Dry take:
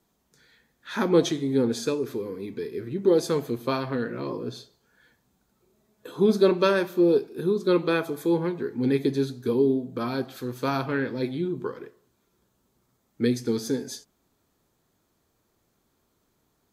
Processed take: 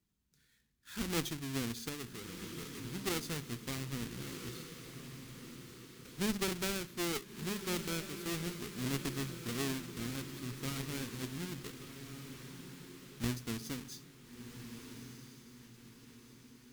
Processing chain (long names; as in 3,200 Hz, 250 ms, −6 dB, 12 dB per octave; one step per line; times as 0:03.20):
each half-wave held at its own peak
guitar amp tone stack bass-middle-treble 6-0-2
feedback delay with all-pass diffusion 1,365 ms, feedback 48%, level −8.5 dB
harmonic generator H 4 −17 dB, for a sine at −22.5 dBFS
level +1.5 dB